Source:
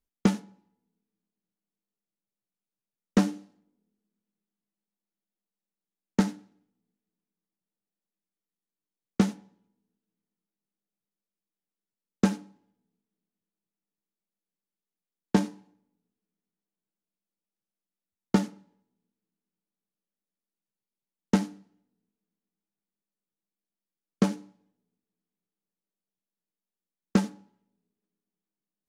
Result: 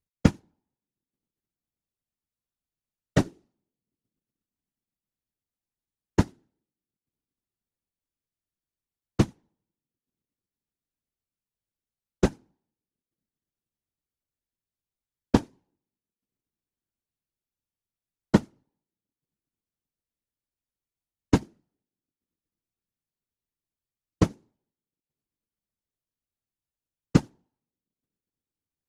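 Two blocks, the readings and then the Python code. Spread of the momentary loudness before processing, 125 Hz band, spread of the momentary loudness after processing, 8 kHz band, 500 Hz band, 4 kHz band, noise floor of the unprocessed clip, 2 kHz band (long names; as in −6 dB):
11 LU, +4.5 dB, 3 LU, −0.5 dB, +3.0 dB, +0.5 dB, below −85 dBFS, +1.5 dB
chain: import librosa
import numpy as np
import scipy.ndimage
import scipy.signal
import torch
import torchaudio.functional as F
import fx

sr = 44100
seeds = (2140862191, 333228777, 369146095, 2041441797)

y = fx.transient(x, sr, attack_db=6, sustain_db=-12)
y = fx.whisperise(y, sr, seeds[0])
y = y * librosa.db_to_amplitude(-3.0)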